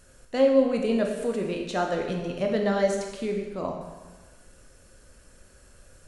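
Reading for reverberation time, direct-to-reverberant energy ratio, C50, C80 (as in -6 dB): 1.3 s, 1.5 dB, 4.0 dB, 6.0 dB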